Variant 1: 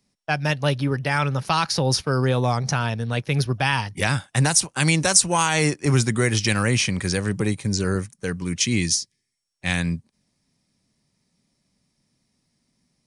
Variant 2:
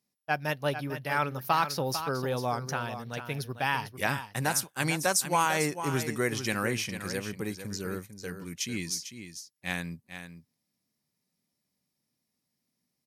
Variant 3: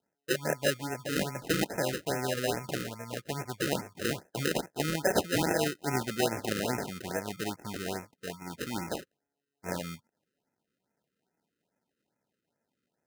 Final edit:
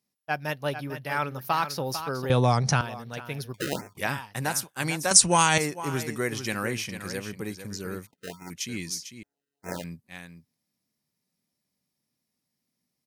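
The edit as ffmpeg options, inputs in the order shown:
-filter_complex "[0:a]asplit=2[s0][s1];[2:a]asplit=3[s2][s3][s4];[1:a]asplit=6[s5][s6][s7][s8][s9][s10];[s5]atrim=end=2.302[s11];[s0]atrim=start=2.298:end=2.812[s12];[s6]atrim=start=2.808:end=3.542[s13];[s2]atrim=start=3.538:end=3.972[s14];[s7]atrim=start=3.968:end=5.112[s15];[s1]atrim=start=5.108:end=5.582[s16];[s8]atrim=start=5.578:end=8.072[s17];[s3]atrim=start=8.068:end=8.502[s18];[s9]atrim=start=8.498:end=9.232[s19];[s4]atrim=start=9.228:end=9.842[s20];[s10]atrim=start=9.838[s21];[s11][s12]acrossfade=d=0.004:c1=hsin:c2=hsin[s22];[s22][s13]acrossfade=d=0.004:c1=hsin:c2=hsin[s23];[s23][s14]acrossfade=d=0.004:c1=hsin:c2=hsin[s24];[s24][s15]acrossfade=d=0.004:c1=hsin:c2=hsin[s25];[s25][s16]acrossfade=d=0.004:c1=hsin:c2=hsin[s26];[s26][s17]acrossfade=d=0.004:c1=hsin:c2=hsin[s27];[s27][s18]acrossfade=d=0.004:c1=hsin:c2=hsin[s28];[s28][s19]acrossfade=d=0.004:c1=hsin:c2=hsin[s29];[s29][s20]acrossfade=d=0.004:c1=hsin:c2=hsin[s30];[s30][s21]acrossfade=d=0.004:c1=hsin:c2=hsin"

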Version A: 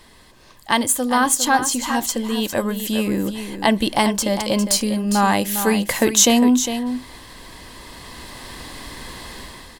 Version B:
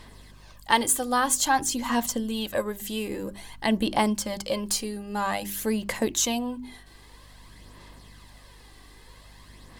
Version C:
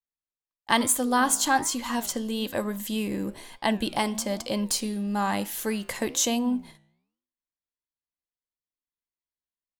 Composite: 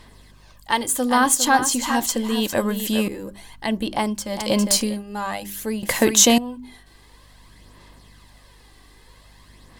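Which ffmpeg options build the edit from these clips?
-filter_complex "[0:a]asplit=3[s0][s1][s2];[1:a]asplit=4[s3][s4][s5][s6];[s3]atrim=end=0.952[s7];[s0]atrim=start=0.948:end=3.082[s8];[s4]atrim=start=3.078:end=4.5[s9];[s1]atrim=start=4.26:end=5.04[s10];[s5]atrim=start=4.8:end=5.832[s11];[s2]atrim=start=5.828:end=6.382[s12];[s6]atrim=start=6.378[s13];[s7][s8]acrossfade=d=0.004:c1=hsin:c2=hsin[s14];[s14][s9]acrossfade=d=0.004:c1=hsin:c2=hsin[s15];[s15][s10]acrossfade=d=0.24:c1=tri:c2=tri[s16];[s16][s11]acrossfade=d=0.24:c1=tri:c2=tri[s17];[s17][s12]acrossfade=d=0.004:c1=hsin:c2=hsin[s18];[s18][s13]acrossfade=d=0.004:c1=hsin:c2=hsin"

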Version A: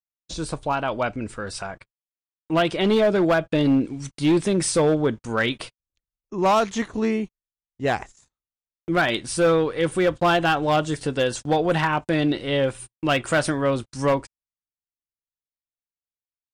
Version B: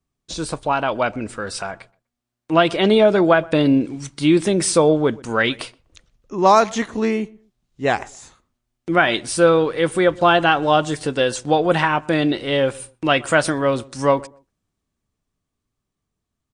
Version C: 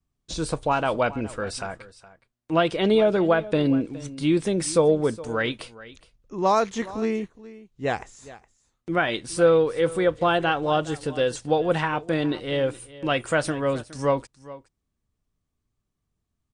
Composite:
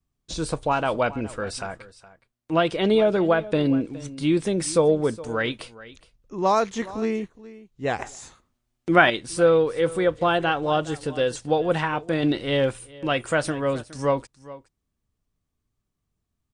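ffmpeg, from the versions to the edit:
-filter_complex "[2:a]asplit=3[s0][s1][s2];[s0]atrim=end=7.992[s3];[1:a]atrim=start=7.988:end=9.102[s4];[s1]atrim=start=9.098:end=12.232[s5];[0:a]atrim=start=12.228:end=12.792[s6];[s2]atrim=start=12.788[s7];[s3][s4]acrossfade=d=0.004:c1=hsin:c2=hsin[s8];[s8][s5]acrossfade=d=0.004:c1=hsin:c2=hsin[s9];[s9][s6]acrossfade=d=0.004:c1=hsin:c2=hsin[s10];[s10][s7]acrossfade=d=0.004:c1=hsin:c2=hsin"

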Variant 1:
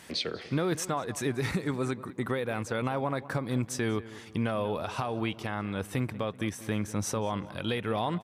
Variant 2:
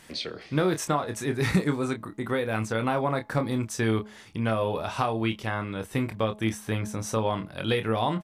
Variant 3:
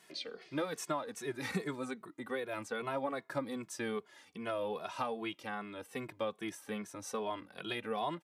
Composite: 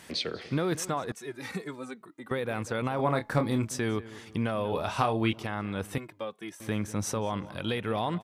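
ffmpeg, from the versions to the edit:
-filter_complex "[2:a]asplit=2[s0][s1];[1:a]asplit=2[s2][s3];[0:a]asplit=5[s4][s5][s6][s7][s8];[s4]atrim=end=1.122[s9];[s0]atrim=start=1.118:end=2.312[s10];[s5]atrim=start=2.308:end=2.992[s11];[s2]atrim=start=2.988:end=3.712[s12];[s6]atrim=start=3.708:end=4.722[s13];[s3]atrim=start=4.718:end=5.332[s14];[s7]atrim=start=5.328:end=5.982[s15];[s1]atrim=start=5.978:end=6.602[s16];[s8]atrim=start=6.598[s17];[s9][s10]acrossfade=d=0.004:c1=hsin:c2=hsin[s18];[s18][s11]acrossfade=d=0.004:c1=hsin:c2=hsin[s19];[s19][s12]acrossfade=d=0.004:c1=hsin:c2=hsin[s20];[s20][s13]acrossfade=d=0.004:c1=hsin:c2=hsin[s21];[s21][s14]acrossfade=d=0.004:c1=hsin:c2=hsin[s22];[s22][s15]acrossfade=d=0.004:c1=hsin:c2=hsin[s23];[s23][s16]acrossfade=d=0.004:c1=hsin:c2=hsin[s24];[s24][s17]acrossfade=d=0.004:c1=hsin:c2=hsin"

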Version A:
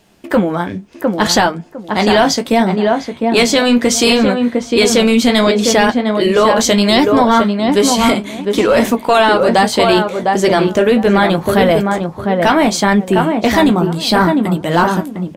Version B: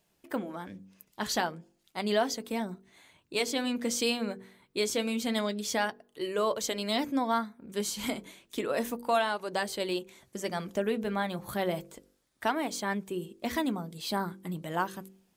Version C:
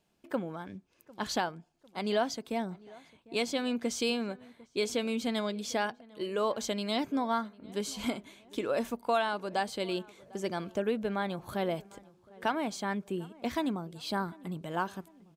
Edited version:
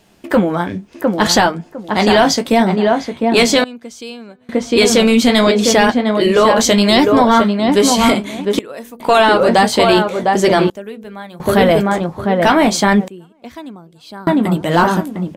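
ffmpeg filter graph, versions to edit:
-filter_complex "[2:a]asplit=2[s0][s1];[1:a]asplit=2[s2][s3];[0:a]asplit=5[s4][s5][s6][s7][s8];[s4]atrim=end=3.642[s9];[s0]atrim=start=3.638:end=4.492[s10];[s5]atrim=start=4.488:end=8.592[s11];[s2]atrim=start=8.588:end=9.002[s12];[s6]atrim=start=8.998:end=10.702[s13];[s3]atrim=start=10.698:end=11.402[s14];[s7]atrim=start=11.398:end=13.082[s15];[s1]atrim=start=13.078:end=14.272[s16];[s8]atrim=start=14.268[s17];[s9][s10]acrossfade=d=0.004:c1=hsin:c2=hsin[s18];[s18][s11]acrossfade=d=0.004:c1=hsin:c2=hsin[s19];[s19][s12]acrossfade=d=0.004:c1=hsin:c2=hsin[s20];[s20][s13]acrossfade=d=0.004:c1=hsin:c2=hsin[s21];[s21][s14]acrossfade=d=0.004:c1=hsin:c2=hsin[s22];[s22][s15]acrossfade=d=0.004:c1=hsin:c2=hsin[s23];[s23][s16]acrossfade=d=0.004:c1=hsin:c2=hsin[s24];[s24][s17]acrossfade=d=0.004:c1=hsin:c2=hsin"

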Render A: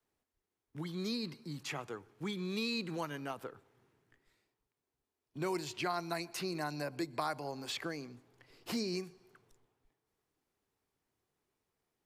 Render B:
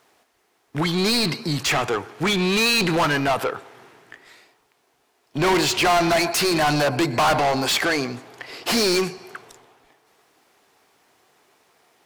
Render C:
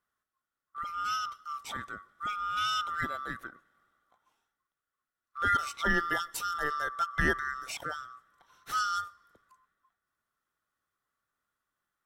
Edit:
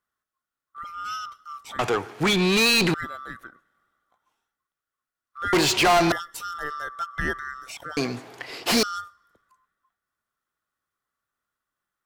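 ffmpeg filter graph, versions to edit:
-filter_complex "[1:a]asplit=3[s0][s1][s2];[2:a]asplit=4[s3][s4][s5][s6];[s3]atrim=end=1.792[s7];[s0]atrim=start=1.788:end=2.942[s8];[s4]atrim=start=2.938:end=5.532[s9];[s1]atrim=start=5.528:end=6.122[s10];[s5]atrim=start=6.118:end=7.972[s11];[s2]atrim=start=7.968:end=8.832[s12];[s6]atrim=start=8.828[s13];[s7][s8]acrossfade=d=0.004:c1=hsin:c2=hsin[s14];[s14][s9]acrossfade=d=0.004:c1=hsin:c2=hsin[s15];[s15][s10]acrossfade=d=0.004:c1=hsin:c2=hsin[s16];[s16][s11]acrossfade=d=0.004:c1=hsin:c2=hsin[s17];[s17][s12]acrossfade=d=0.004:c1=hsin:c2=hsin[s18];[s18][s13]acrossfade=d=0.004:c1=hsin:c2=hsin"

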